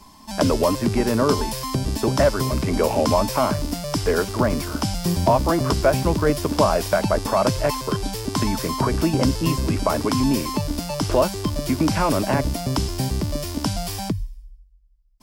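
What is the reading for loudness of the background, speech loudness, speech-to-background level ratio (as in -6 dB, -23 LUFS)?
-25.5 LUFS, -23.0 LUFS, 2.5 dB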